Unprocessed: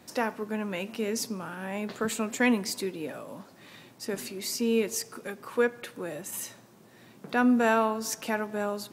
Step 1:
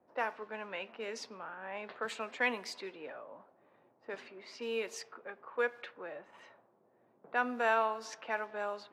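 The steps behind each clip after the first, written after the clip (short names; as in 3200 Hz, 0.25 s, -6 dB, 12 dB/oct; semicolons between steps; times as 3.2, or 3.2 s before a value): low-pass opened by the level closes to 510 Hz, open at -24.5 dBFS; three-band isolator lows -19 dB, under 470 Hz, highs -15 dB, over 4700 Hz; gain -3.5 dB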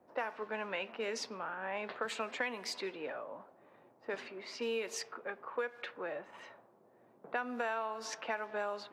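compressor 10:1, threshold -37 dBFS, peak gain reduction 12.5 dB; gain +4.5 dB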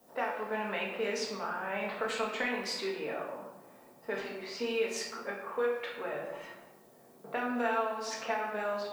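added noise blue -70 dBFS; shoebox room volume 350 m³, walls mixed, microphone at 1.6 m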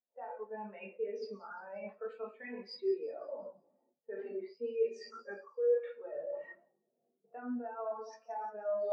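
reverse; compressor 12:1, threshold -42 dBFS, peak gain reduction 17 dB; reverse; thin delay 0.176 s, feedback 64%, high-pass 5000 Hz, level -4.5 dB; spectral expander 2.5:1; gain +9.5 dB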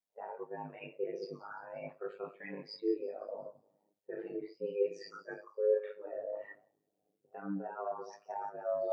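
ring modulator 51 Hz; gain +3 dB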